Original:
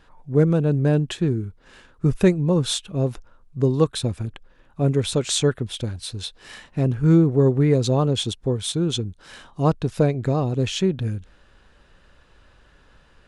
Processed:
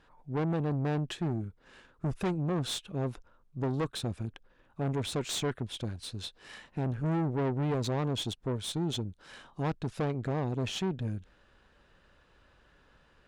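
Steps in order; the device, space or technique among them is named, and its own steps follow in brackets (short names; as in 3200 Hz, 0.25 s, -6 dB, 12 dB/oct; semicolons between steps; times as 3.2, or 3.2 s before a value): tube preamp driven hard (tube stage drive 22 dB, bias 0.5; low shelf 94 Hz -5.5 dB; high shelf 5300 Hz -6 dB); gain -4 dB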